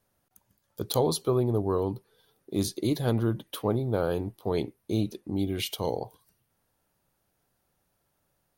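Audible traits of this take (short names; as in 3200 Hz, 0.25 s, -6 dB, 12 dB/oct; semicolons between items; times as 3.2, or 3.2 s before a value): noise floor -76 dBFS; spectral tilt -6.5 dB/oct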